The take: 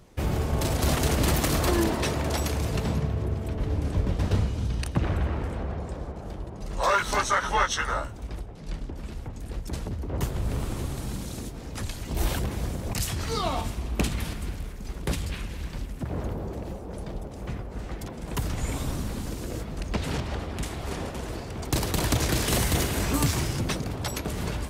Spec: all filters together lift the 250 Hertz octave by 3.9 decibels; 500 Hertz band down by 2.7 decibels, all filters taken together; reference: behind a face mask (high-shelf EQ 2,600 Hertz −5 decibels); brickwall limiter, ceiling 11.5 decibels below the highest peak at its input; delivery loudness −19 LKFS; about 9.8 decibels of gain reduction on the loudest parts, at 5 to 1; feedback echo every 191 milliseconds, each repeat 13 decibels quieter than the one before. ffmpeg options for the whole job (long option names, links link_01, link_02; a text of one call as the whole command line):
ffmpeg -i in.wav -af "equalizer=frequency=250:width_type=o:gain=7,equalizer=frequency=500:width_type=o:gain=-6,acompressor=threshold=-29dB:ratio=5,alimiter=level_in=3.5dB:limit=-24dB:level=0:latency=1,volume=-3.5dB,highshelf=frequency=2600:gain=-5,aecho=1:1:191|382|573:0.224|0.0493|0.0108,volume=18.5dB" out.wav